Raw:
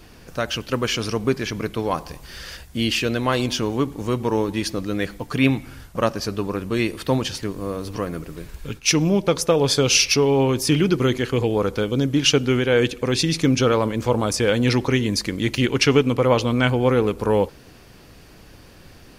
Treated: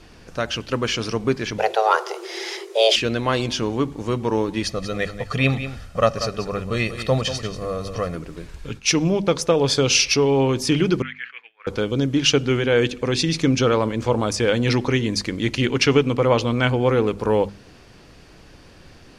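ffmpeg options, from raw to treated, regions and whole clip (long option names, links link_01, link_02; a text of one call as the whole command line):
ffmpeg -i in.wav -filter_complex "[0:a]asettb=1/sr,asplit=3[link_01][link_02][link_03];[link_01]atrim=end=1.584[link_04];[link_02]atrim=start=1.58:end=2.96,asetpts=PTS-STARTPTS,afade=type=in:duration=0.004:curve=qsin,afade=type=out:start_time=1.376:duration=0.004:curve=qsin,bandreject=frequency=7500:width=28,acontrast=54,afreqshift=330[link_05];[link_03]atrim=start=2.956[link_06];[link_04][link_05]acrossfade=duration=0.004:curve1=hsin:curve2=qsin[link_07];[link_07][link_06]acrossfade=duration=0.004:curve1=qsin:curve2=hsin,asettb=1/sr,asplit=3[link_08][link_09][link_10];[link_08]atrim=end=4.634[link_11];[link_09]atrim=start=4.63:end=8.15,asetpts=PTS-STARTPTS,afade=type=in:duration=0.004:curve=qsin,afade=type=out:start_time=3.516:duration=0.004:curve=qsin,aecho=1:1:1.6:0.68,atrim=end_sample=155232,aecho=1:1:188:0.282,atrim=end_sample=155232[link_12];[link_10]atrim=start=8.146[link_13];[link_11][link_12]acrossfade=duration=0.004:curve1=hsin:curve2=qsin[link_14];[link_14][link_13]acrossfade=duration=0.004:curve1=qsin:curve2=hsin,asettb=1/sr,asplit=3[link_15][link_16][link_17];[link_15]atrim=end=11.024[link_18];[link_16]atrim=start=11.02:end=11.67,asetpts=PTS-STARTPTS,afade=type=in:duration=0.004:curve=qsin,afade=type=out:start_time=0.646:duration=0.004:curve=qsin,asuperpass=centerf=2000:order=4:qfactor=2,agate=range=-33dB:threshold=-41dB:ratio=3:release=100:detection=peak[link_19];[link_17]atrim=start=11.666[link_20];[link_18][link_19]acrossfade=duration=0.004:curve1=hsin:curve2=qsin[link_21];[link_21][link_20]acrossfade=duration=0.004:curve1=qsin:curve2=hsin,lowpass=7800,bandreject=frequency=50:width_type=h:width=6,bandreject=frequency=100:width_type=h:width=6,bandreject=frequency=150:width_type=h:width=6,bandreject=frequency=200:width_type=h:width=6,bandreject=frequency=250:width_type=h:width=6" out.wav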